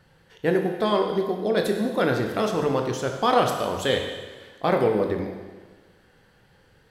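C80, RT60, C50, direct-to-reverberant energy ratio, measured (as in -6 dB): 6.5 dB, 1.4 s, 5.0 dB, 2.5 dB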